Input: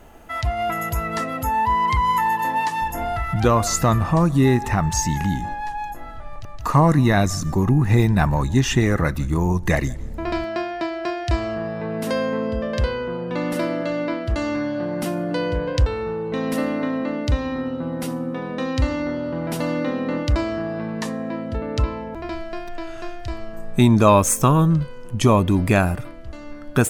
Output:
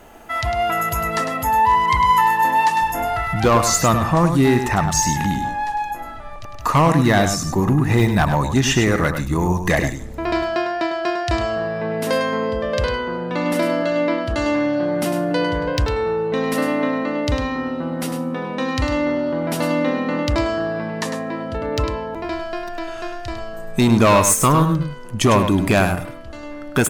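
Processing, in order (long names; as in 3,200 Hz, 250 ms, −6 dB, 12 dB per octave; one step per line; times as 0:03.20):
low-shelf EQ 180 Hz −8.5 dB
gain into a clipping stage and back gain 14 dB
on a send: single-tap delay 102 ms −8 dB
on the sum: level +4.5 dB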